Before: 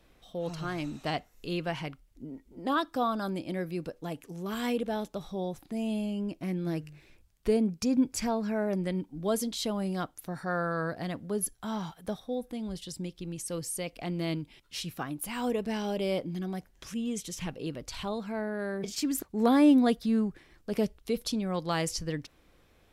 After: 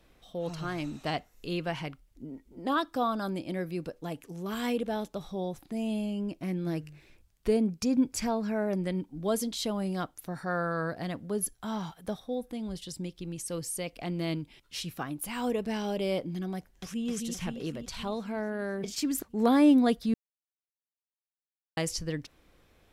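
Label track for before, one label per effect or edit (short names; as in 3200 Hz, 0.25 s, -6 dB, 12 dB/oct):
16.560000	17.070000	echo throw 0.26 s, feedback 65%, level -3.5 dB
20.140000	21.770000	mute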